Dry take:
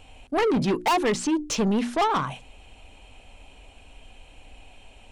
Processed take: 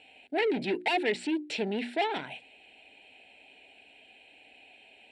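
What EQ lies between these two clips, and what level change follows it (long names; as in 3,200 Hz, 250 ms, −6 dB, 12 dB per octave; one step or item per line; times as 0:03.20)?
loudspeaker in its box 470–7,300 Hz, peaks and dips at 530 Hz −7 dB, 1,100 Hz −9 dB, 3,200 Hz −6 dB, 5,000 Hz −8 dB
phaser with its sweep stopped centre 2,800 Hz, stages 4
+3.0 dB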